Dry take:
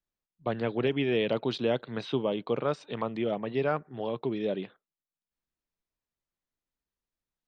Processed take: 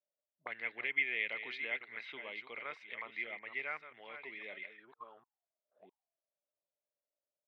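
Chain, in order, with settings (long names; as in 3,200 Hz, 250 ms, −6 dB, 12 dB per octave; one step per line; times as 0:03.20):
delay that plays each chunk backwards 655 ms, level −10 dB
envelope filter 590–2,100 Hz, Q 15, up, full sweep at −33.5 dBFS
level +13 dB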